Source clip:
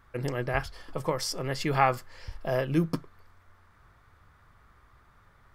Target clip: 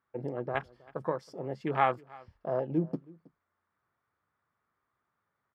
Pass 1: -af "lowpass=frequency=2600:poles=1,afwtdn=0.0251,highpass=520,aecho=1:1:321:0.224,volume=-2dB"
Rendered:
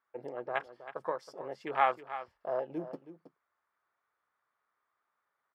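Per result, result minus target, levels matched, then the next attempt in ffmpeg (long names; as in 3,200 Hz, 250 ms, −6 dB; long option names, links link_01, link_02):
echo-to-direct +10.5 dB; 250 Hz band −7.0 dB
-af "lowpass=frequency=2600:poles=1,afwtdn=0.0251,highpass=520,aecho=1:1:321:0.0668,volume=-2dB"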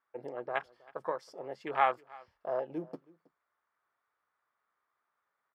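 250 Hz band −7.5 dB
-af "lowpass=frequency=2600:poles=1,afwtdn=0.0251,highpass=180,aecho=1:1:321:0.0668,volume=-2dB"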